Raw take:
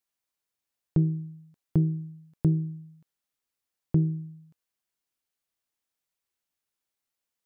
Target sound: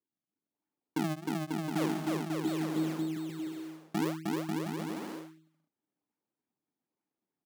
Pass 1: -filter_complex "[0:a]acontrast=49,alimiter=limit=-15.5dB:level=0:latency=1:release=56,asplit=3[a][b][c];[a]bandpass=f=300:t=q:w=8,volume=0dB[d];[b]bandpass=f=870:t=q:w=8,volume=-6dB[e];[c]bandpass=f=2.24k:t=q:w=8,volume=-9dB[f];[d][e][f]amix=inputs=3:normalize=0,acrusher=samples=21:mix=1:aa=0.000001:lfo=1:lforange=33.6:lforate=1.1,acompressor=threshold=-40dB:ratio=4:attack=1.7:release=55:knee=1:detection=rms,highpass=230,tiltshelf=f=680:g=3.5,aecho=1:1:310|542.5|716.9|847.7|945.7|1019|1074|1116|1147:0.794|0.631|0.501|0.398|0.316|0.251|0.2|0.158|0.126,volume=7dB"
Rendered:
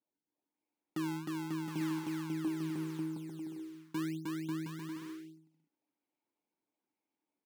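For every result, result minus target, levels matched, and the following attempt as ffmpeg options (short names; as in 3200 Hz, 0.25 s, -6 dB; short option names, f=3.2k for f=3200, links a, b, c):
decimation with a swept rate: distortion -11 dB; compressor: peak gain reduction +4.5 dB
-filter_complex "[0:a]acontrast=49,alimiter=limit=-15.5dB:level=0:latency=1:release=56,asplit=3[a][b][c];[a]bandpass=f=300:t=q:w=8,volume=0dB[d];[b]bandpass=f=870:t=q:w=8,volume=-6dB[e];[c]bandpass=f=2.24k:t=q:w=8,volume=-9dB[f];[d][e][f]amix=inputs=3:normalize=0,acrusher=samples=53:mix=1:aa=0.000001:lfo=1:lforange=84.8:lforate=1.1,acompressor=threshold=-40dB:ratio=4:attack=1.7:release=55:knee=1:detection=rms,highpass=230,tiltshelf=f=680:g=3.5,aecho=1:1:310|542.5|716.9|847.7|945.7|1019|1074|1116|1147:0.794|0.631|0.501|0.398|0.316|0.251|0.2|0.158|0.126,volume=7dB"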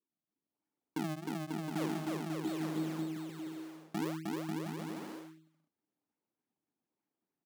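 compressor: peak gain reduction +5 dB
-filter_complex "[0:a]acontrast=49,alimiter=limit=-15.5dB:level=0:latency=1:release=56,asplit=3[a][b][c];[a]bandpass=f=300:t=q:w=8,volume=0dB[d];[b]bandpass=f=870:t=q:w=8,volume=-6dB[e];[c]bandpass=f=2.24k:t=q:w=8,volume=-9dB[f];[d][e][f]amix=inputs=3:normalize=0,acrusher=samples=53:mix=1:aa=0.000001:lfo=1:lforange=84.8:lforate=1.1,acompressor=threshold=-33.5dB:ratio=4:attack=1.7:release=55:knee=1:detection=rms,highpass=230,tiltshelf=f=680:g=3.5,aecho=1:1:310|542.5|716.9|847.7|945.7|1019|1074|1116|1147:0.794|0.631|0.501|0.398|0.316|0.251|0.2|0.158|0.126,volume=7dB"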